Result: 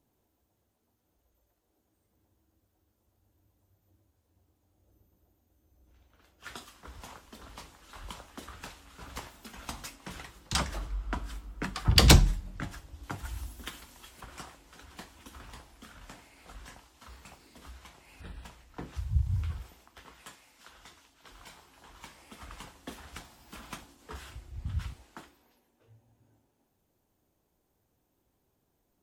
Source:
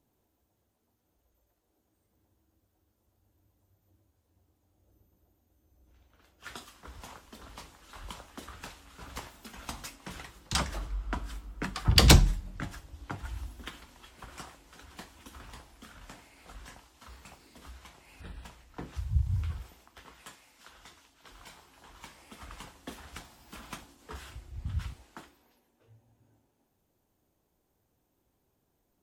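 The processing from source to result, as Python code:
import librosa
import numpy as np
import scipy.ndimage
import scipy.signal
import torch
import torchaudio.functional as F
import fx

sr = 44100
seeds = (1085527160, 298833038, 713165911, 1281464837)

y = fx.high_shelf(x, sr, hz=6300.0, db=10.5, at=(13.03, 14.21))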